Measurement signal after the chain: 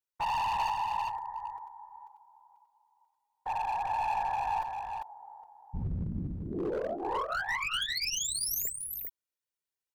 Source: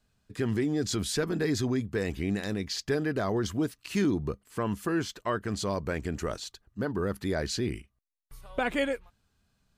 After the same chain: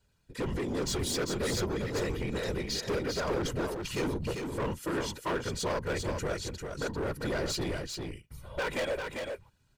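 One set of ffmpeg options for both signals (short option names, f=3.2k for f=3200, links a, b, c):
-af "aecho=1:1:2.1:0.84,aeval=exprs='0.2*(cos(1*acos(clip(val(0)/0.2,-1,1)))-cos(1*PI/2))+0.00794*(cos(6*acos(clip(val(0)/0.2,-1,1)))-cos(6*PI/2))':c=same,afftfilt=real='hypot(re,im)*cos(2*PI*random(0))':imag='hypot(re,im)*sin(2*PI*random(1))':win_size=512:overlap=0.75,asoftclip=type=hard:threshold=-32.5dB,aecho=1:1:396:0.562,volume=4dB"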